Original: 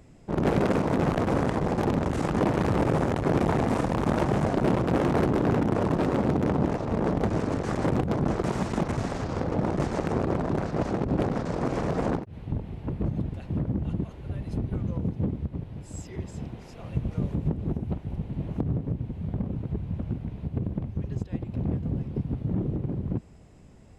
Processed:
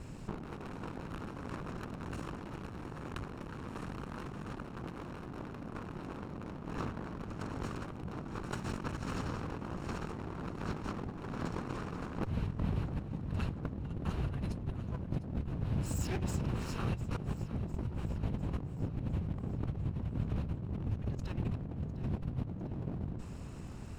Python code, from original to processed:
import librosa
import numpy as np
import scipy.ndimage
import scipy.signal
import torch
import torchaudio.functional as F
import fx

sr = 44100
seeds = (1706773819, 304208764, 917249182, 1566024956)

y = fx.lower_of_two(x, sr, delay_ms=0.72)
y = fx.over_compress(y, sr, threshold_db=-38.0, ratio=-1.0)
y = fx.echo_feedback(y, sr, ms=703, feedback_pct=59, wet_db=-16.0)
y = F.gain(torch.from_numpy(y), -1.5).numpy()